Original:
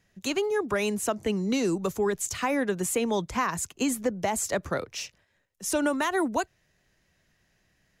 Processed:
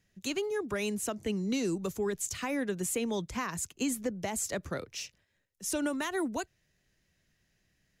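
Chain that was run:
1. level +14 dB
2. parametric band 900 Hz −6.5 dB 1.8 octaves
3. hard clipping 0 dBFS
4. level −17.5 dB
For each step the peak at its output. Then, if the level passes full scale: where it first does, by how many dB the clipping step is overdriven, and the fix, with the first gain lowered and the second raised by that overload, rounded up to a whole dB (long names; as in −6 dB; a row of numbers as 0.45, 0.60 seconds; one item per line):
−0.5, −2.0, −2.0, −19.5 dBFS
no step passes full scale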